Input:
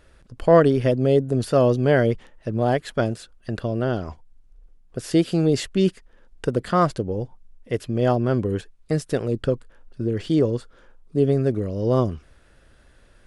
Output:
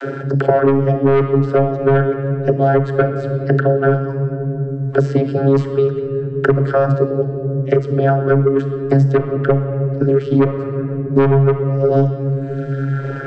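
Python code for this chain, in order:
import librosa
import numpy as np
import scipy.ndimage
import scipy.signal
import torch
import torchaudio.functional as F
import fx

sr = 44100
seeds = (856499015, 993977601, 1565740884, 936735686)

p1 = fx.dereverb_blind(x, sr, rt60_s=1.3)
p2 = fx.rider(p1, sr, range_db=10, speed_s=0.5)
p3 = p1 + (p2 * 10.0 ** (0.0 / 20.0))
p4 = fx.small_body(p3, sr, hz=(390.0, 1500.0), ring_ms=20, db=16)
p5 = fx.vocoder(p4, sr, bands=32, carrier='saw', carrier_hz=137.0)
p6 = 10.0 ** (-1.0 / 20.0) * np.tanh(p5 / 10.0 ** (-1.0 / 20.0))
p7 = fx.room_shoebox(p6, sr, seeds[0], volume_m3=790.0, walls='mixed', distance_m=0.72)
p8 = fx.band_squash(p7, sr, depth_pct=100)
y = p8 * 10.0 ** (-3.0 / 20.0)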